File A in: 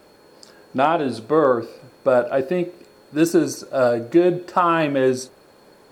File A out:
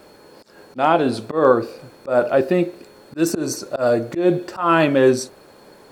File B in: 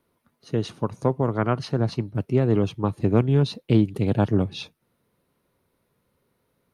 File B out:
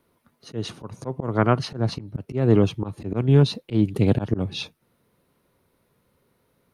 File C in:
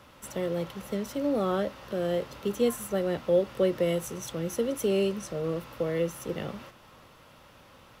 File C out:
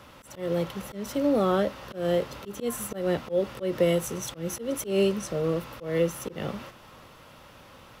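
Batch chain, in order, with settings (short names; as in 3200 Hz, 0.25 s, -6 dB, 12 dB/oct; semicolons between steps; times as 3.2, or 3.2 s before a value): auto swell 0.164 s; gain +4 dB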